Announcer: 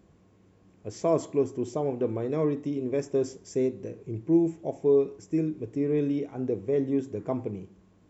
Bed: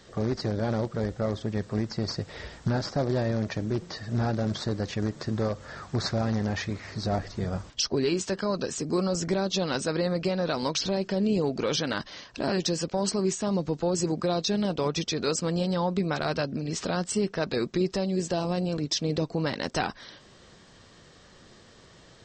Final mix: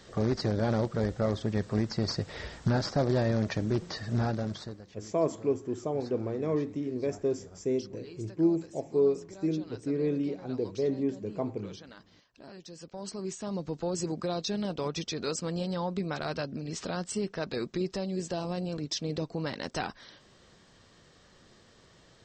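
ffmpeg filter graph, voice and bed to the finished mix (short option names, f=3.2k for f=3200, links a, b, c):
-filter_complex "[0:a]adelay=4100,volume=-3dB[a];[1:a]volume=15.5dB,afade=t=out:st=4.06:d=0.78:silence=0.0891251,afade=t=in:st=12.66:d=1.17:silence=0.16788[b];[a][b]amix=inputs=2:normalize=0"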